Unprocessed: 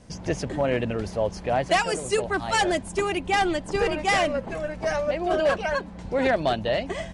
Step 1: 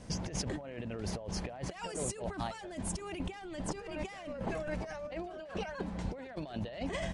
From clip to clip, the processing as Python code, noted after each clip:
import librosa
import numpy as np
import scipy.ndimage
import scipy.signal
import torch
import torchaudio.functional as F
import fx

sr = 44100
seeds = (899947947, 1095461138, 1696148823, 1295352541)

y = fx.over_compress(x, sr, threshold_db=-34.0, ratio=-1.0)
y = y * librosa.db_to_amplitude(-6.5)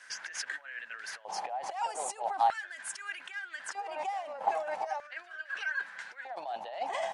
y = fx.filter_lfo_highpass(x, sr, shape='square', hz=0.4, low_hz=800.0, high_hz=1600.0, q=7.5)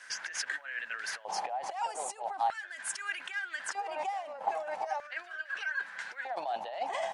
y = fx.rider(x, sr, range_db=5, speed_s=0.5)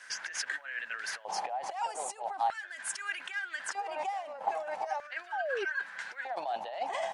y = fx.spec_paint(x, sr, seeds[0], shape='fall', start_s=5.32, length_s=0.33, low_hz=370.0, high_hz=910.0, level_db=-34.0)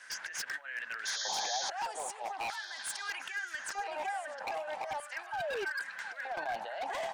y = 10.0 ** (-29.0 / 20.0) * (np.abs((x / 10.0 ** (-29.0 / 20.0) + 3.0) % 4.0 - 2.0) - 1.0)
y = fx.spec_paint(y, sr, seeds[1], shape='noise', start_s=1.05, length_s=0.65, low_hz=3100.0, high_hz=6900.0, level_db=-36.0)
y = fx.echo_stepped(y, sr, ms=714, hz=1400.0, octaves=1.4, feedback_pct=70, wet_db=-5.5)
y = y * librosa.db_to_amplitude(-1.5)